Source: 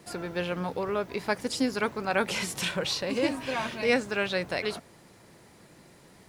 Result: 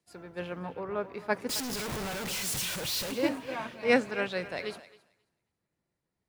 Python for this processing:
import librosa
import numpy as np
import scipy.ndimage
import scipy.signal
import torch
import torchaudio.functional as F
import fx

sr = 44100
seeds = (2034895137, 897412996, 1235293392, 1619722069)

y = fx.clip_1bit(x, sr, at=(1.49, 3.12))
y = fx.echo_thinned(y, sr, ms=268, feedback_pct=39, hz=390.0, wet_db=-11.0)
y = fx.band_widen(y, sr, depth_pct=100)
y = F.gain(torch.from_numpy(y), -5.0).numpy()